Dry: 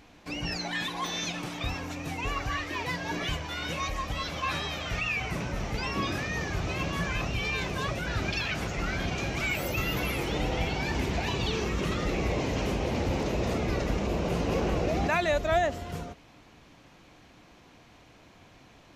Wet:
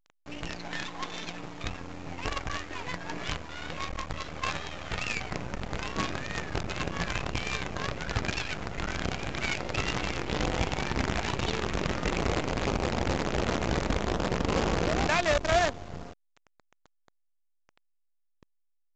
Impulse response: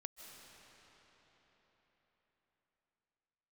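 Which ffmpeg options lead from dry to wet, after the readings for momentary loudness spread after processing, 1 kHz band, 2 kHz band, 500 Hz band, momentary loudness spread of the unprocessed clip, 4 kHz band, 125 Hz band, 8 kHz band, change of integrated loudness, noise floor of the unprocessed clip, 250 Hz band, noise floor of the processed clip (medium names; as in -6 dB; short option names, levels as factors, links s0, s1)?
11 LU, 0.0 dB, -1.0 dB, -1.0 dB, 5 LU, -1.0 dB, -2.0 dB, +0.5 dB, -1.0 dB, -56 dBFS, -1.5 dB, -72 dBFS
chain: -af "adynamicsmooth=sensitivity=7.5:basefreq=730,acrusher=bits=5:dc=4:mix=0:aa=0.000001" -ar 16000 -c:a pcm_alaw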